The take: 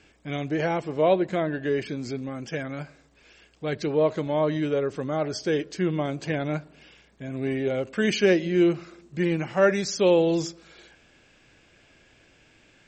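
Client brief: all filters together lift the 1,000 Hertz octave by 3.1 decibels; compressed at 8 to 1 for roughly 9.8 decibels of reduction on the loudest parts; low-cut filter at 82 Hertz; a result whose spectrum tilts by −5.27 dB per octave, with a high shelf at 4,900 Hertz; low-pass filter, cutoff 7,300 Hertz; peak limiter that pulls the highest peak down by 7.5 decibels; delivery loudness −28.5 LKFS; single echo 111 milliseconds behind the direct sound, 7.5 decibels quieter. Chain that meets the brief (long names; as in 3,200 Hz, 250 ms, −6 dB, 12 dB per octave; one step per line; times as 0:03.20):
high-pass filter 82 Hz
low-pass filter 7,300 Hz
parametric band 1,000 Hz +4.5 dB
high-shelf EQ 4,900 Hz −3.5 dB
downward compressor 8 to 1, threshold −24 dBFS
brickwall limiter −22 dBFS
single-tap delay 111 ms −7.5 dB
level +3 dB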